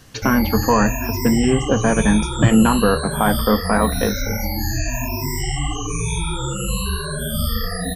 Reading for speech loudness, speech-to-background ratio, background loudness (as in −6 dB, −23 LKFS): −18.5 LKFS, 5.5 dB, −24.0 LKFS